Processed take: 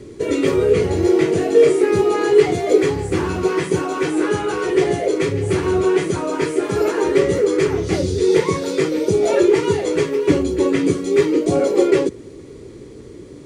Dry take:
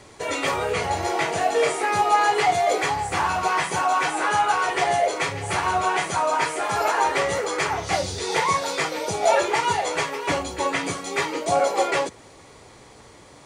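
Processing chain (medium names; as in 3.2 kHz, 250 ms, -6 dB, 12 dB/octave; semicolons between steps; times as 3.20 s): resonant low shelf 540 Hz +12 dB, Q 3; trim -2 dB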